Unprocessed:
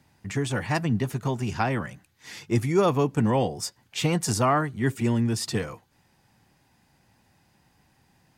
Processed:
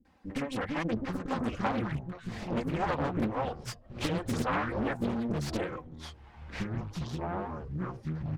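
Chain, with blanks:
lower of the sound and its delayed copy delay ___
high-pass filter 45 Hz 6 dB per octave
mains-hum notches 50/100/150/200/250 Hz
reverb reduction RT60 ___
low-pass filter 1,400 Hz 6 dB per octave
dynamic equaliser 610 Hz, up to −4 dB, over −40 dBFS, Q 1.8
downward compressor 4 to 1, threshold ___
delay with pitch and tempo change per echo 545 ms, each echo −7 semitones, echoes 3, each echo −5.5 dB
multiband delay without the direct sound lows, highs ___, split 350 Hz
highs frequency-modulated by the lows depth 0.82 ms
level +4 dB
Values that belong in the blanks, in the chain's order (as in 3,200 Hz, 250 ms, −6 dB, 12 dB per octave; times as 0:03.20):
3.8 ms, 0.55 s, −31 dBFS, 50 ms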